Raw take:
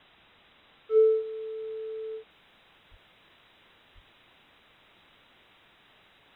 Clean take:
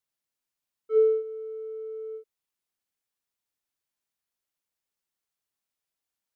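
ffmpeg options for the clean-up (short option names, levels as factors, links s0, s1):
-filter_complex "[0:a]asplit=3[s0][s1][s2];[s0]afade=t=out:st=2.9:d=0.02[s3];[s1]highpass=f=140:w=0.5412,highpass=f=140:w=1.3066,afade=t=in:st=2.9:d=0.02,afade=t=out:st=3.02:d=0.02[s4];[s2]afade=t=in:st=3.02:d=0.02[s5];[s3][s4][s5]amix=inputs=3:normalize=0,asplit=3[s6][s7][s8];[s6]afade=t=out:st=3.94:d=0.02[s9];[s7]highpass=f=140:w=0.5412,highpass=f=140:w=1.3066,afade=t=in:st=3.94:d=0.02,afade=t=out:st=4.06:d=0.02[s10];[s8]afade=t=in:st=4.06:d=0.02[s11];[s9][s10][s11]amix=inputs=3:normalize=0,afwtdn=0.0022,asetnsamples=n=441:p=0,asendcmd='2.3 volume volume -5.5dB',volume=1"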